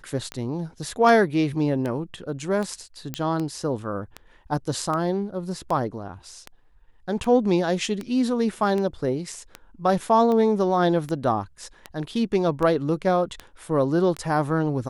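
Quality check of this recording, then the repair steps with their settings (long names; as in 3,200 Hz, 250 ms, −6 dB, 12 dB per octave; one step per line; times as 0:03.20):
scratch tick 78 rpm −17 dBFS
0:03.14: click −12 dBFS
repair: click removal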